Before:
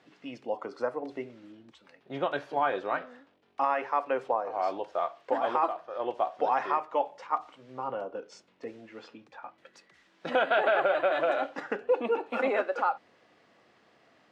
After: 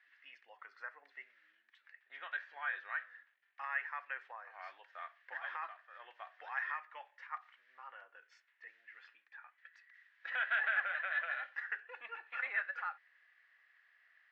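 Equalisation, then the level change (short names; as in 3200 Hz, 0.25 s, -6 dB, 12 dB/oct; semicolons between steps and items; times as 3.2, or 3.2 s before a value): ladder band-pass 1900 Hz, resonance 75%; +2.5 dB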